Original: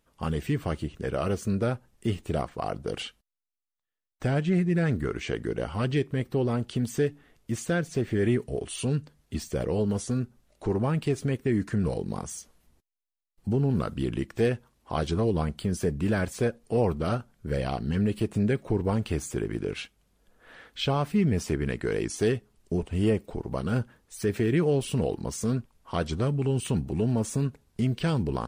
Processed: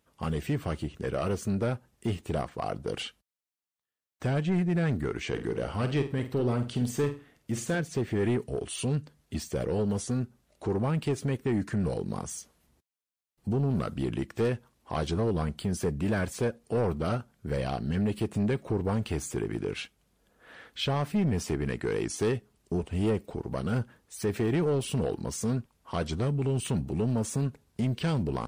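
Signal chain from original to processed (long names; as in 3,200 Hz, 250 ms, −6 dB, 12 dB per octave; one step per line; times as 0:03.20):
high-pass filter 56 Hz
soft clipping −20.5 dBFS, distortion −15 dB
0:05.29–0:07.80: flutter between parallel walls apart 8.4 metres, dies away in 0.32 s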